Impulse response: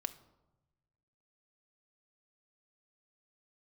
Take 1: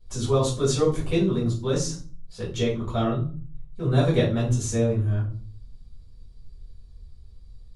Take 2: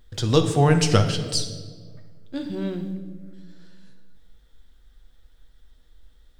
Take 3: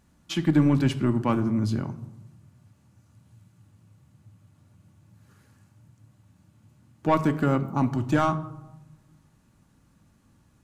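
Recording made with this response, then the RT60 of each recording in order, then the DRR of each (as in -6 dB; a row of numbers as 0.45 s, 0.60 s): 3; 0.45 s, 1.6 s, 1.0 s; -7.5 dB, 5.5 dB, 8.5 dB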